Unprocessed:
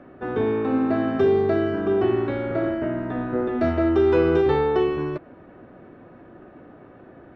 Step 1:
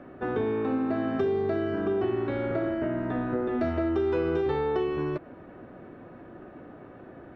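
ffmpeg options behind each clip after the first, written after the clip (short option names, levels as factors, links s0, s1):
-af "acompressor=threshold=0.0501:ratio=3"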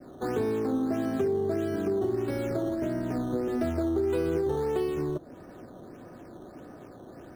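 -filter_complex "[0:a]adynamicequalizer=threshold=0.00501:dfrequency=1100:dqfactor=0.96:tfrequency=1100:tqfactor=0.96:attack=5:release=100:ratio=0.375:range=2.5:mode=cutabove:tftype=bell,acrossover=split=140|1300[s0][s1][s2];[s2]acrusher=samples=12:mix=1:aa=0.000001:lfo=1:lforange=12:lforate=1.6[s3];[s0][s1][s3]amix=inputs=3:normalize=0"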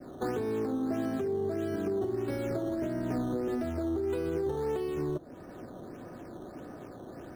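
-af "alimiter=level_in=1.12:limit=0.0631:level=0:latency=1:release=480,volume=0.891,volume=1.19"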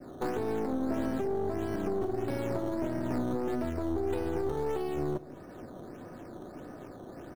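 -af "aeval=exprs='(tanh(25.1*val(0)+0.75)-tanh(0.75))/25.1':c=same,aecho=1:1:206:0.106,volume=1.58"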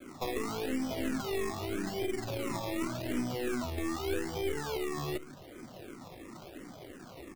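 -filter_complex "[0:a]acrusher=samples=23:mix=1:aa=0.000001:lfo=1:lforange=13.8:lforate=0.85,asplit=2[s0][s1];[s1]afreqshift=-2.9[s2];[s0][s2]amix=inputs=2:normalize=1"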